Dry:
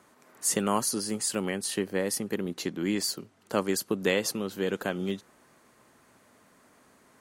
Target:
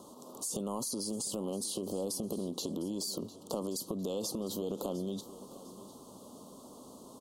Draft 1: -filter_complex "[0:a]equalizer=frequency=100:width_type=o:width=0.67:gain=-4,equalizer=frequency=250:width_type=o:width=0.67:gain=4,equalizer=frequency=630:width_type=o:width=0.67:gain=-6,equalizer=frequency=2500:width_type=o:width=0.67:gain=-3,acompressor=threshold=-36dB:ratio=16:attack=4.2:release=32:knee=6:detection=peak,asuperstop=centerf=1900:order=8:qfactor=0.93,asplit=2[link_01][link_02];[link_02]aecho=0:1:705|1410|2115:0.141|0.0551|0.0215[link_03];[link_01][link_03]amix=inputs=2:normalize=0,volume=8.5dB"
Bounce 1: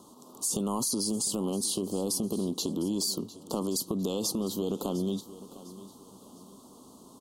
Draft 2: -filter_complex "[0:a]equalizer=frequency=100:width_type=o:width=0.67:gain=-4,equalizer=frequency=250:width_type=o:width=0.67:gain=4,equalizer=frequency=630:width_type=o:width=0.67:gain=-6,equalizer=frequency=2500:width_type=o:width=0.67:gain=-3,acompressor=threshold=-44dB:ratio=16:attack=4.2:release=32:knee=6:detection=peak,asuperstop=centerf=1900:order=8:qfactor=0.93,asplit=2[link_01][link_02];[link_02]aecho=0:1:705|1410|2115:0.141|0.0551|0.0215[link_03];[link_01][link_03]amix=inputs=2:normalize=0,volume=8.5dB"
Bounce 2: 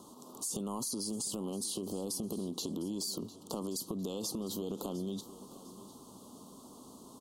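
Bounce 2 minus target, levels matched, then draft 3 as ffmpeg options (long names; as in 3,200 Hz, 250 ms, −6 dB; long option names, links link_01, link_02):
500 Hz band −2.5 dB
-filter_complex "[0:a]equalizer=frequency=100:width_type=o:width=0.67:gain=-4,equalizer=frequency=250:width_type=o:width=0.67:gain=4,equalizer=frequency=630:width_type=o:width=0.67:gain=-6,equalizer=frequency=2500:width_type=o:width=0.67:gain=-3,acompressor=threshold=-44dB:ratio=16:attack=4.2:release=32:knee=6:detection=peak,asuperstop=centerf=1900:order=8:qfactor=0.93,equalizer=frequency=560:width=2.5:gain=7.5,asplit=2[link_01][link_02];[link_02]aecho=0:1:705|1410|2115:0.141|0.0551|0.0215[link_03];[link_01][link_03]amix=inputs=2:normalize=0,volume=8.5dB"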